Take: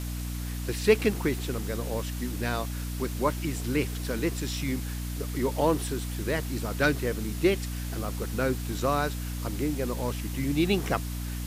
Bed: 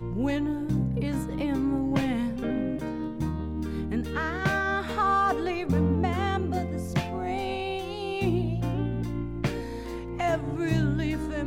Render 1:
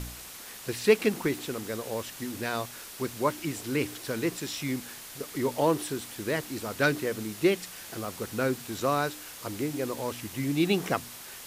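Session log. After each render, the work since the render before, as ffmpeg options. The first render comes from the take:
ffmpeg -i in.wav -af "bandreject=frequency=60:width_type=h:width=4,bandreject=frequency=120:width_type=h:width=4,bandreject=frequency=180:width_type=h:width=4,bandreject=frequency=240:width_type=h:width=4,bandreject=frequency=300:width_type=h:width=4" out.wav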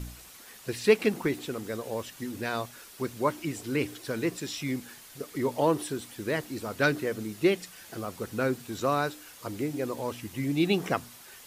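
ffmpeg -i in.wav -af "afftdn=noise_reduction=7:noise_floor=-44" out.wav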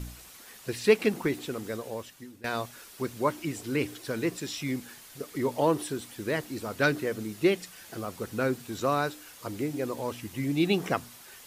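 ffmpeg -i in.wav -filter_complex "[0:a]asplit=2[link_01][link_02];[link_01]atrim=end=2.44,asetpts=PTS-STARTPTS,afade=type=out:start_time=1.71:duration=0.73:silence=0.105925[link_03];[link_02]atrim=start=2.44,asetpts=PTS-STARTPTS,afade=type=in:duration=0.004:curve=hsin:silence=0.105925[link_04];[link_03][link_04]concat=n=2:v=0:a=1" out.wav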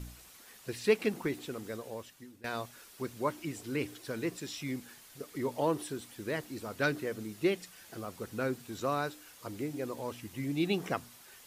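ffmpeg -i in.wav -af "volume=-5.5dB" out.wav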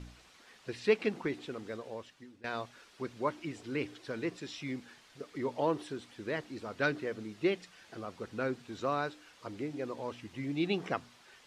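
ffmpeg -i in.wav -af "lowpass=4600,lowshelf=frequency=170:gain=-5" out.wav

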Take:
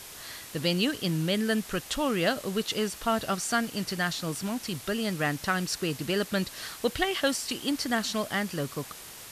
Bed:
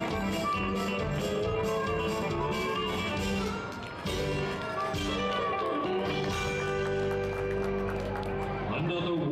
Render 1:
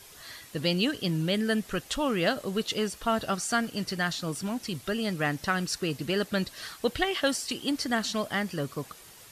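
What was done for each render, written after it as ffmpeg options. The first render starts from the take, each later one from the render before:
ffmpeg -i in.wav -af "afftdn=noise_reduction=8:noise_floor=-45" out.wav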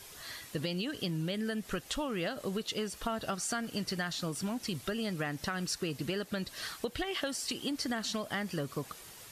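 ffmpeg -i in.wav -af "alimiter=limit=-19dB:level=0:latency=1:release=214,acompressor=threshold=-31dB:ratio=6" out.wav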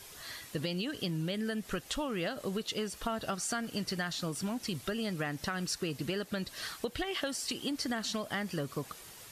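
ffmpeg -i in.wav -af anull out.wav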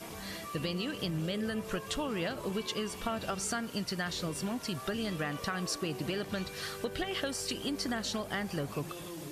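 ffmpeg -i in.wav -i bed.wav -filter_complex "[1:a]volume=-14dB[link_01];[0:a][link_01]amix=inputs=2:normalize=0" out.wav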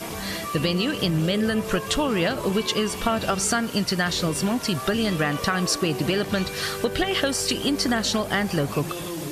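ffmpeg -i in.wav -af "volume=11.5dB" out.wav

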